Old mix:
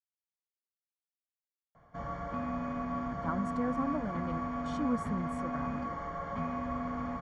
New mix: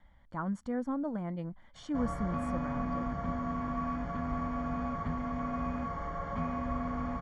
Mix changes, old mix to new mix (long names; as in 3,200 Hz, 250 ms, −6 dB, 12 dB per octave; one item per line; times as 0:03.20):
speech: entry −2.90 s
master: add low-shelf EQ 69 Hz +11.5 dB